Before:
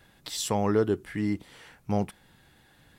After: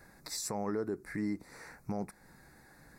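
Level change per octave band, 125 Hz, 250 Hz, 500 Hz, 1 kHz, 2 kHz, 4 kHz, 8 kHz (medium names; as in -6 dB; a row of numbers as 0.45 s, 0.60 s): -11.5 dB, -8.0 dB, -10.5 dB, -9.5 dB, -5.5 dB, -8.5 dB, -4.5 dB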